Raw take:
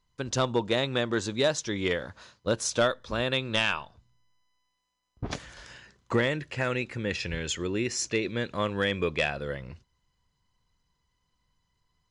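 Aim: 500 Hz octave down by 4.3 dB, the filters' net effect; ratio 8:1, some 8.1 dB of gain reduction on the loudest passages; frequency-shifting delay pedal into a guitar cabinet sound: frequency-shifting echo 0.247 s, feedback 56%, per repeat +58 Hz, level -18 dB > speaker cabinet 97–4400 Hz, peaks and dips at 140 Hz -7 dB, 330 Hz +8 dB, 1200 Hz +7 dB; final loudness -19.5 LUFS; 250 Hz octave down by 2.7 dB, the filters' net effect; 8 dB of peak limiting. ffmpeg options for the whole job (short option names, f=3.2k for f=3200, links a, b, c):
-filter_complex "[0:a]equalizer=f=250:t=o:g=-6.5,equalizer=f=500:t=o:g=-5.5,acompressor=threshold=-31dB:ratio=8,alimiter=level_in=3dB:limit=-24dB:level=0:latency=1,volume=-3dB,asplit=6[a][b][c][d][e][f];[b]adelay=247,afreqshift=58,volume=-18dB[g];[c]adelay=494,afreqshift=116,volume=-23dB[h];[d]adelay=741,afreqshift=174,volume=-28.1dB[i];[e]adelay=988,afreqshift=232,volume=-33.1dB[j];[f]adelay=1235,afreqshift=290,volume=-38.1dB[k];[a][g][h][i][j][k]amix=inputs=6:normalize=0,highpass=97,equalizer=f=140:t=q:w=4:g=-7,equalizer=f=330:t=q:w=4:g=8,equalizer=f=1.2k:t=q:w=4:g=7,lowpass=f=4.4k:w=0.5412,lowpass=f=4.4k:w=1.3066,volume=18.5dB"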